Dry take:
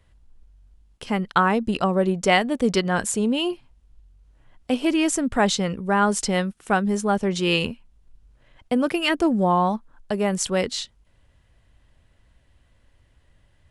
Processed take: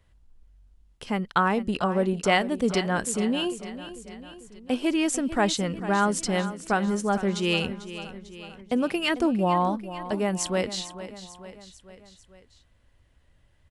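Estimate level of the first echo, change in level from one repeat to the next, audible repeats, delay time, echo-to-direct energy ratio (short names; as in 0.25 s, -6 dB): -13.5 dB, -5.0 dB, 4, 0.446 s, -12.0 dB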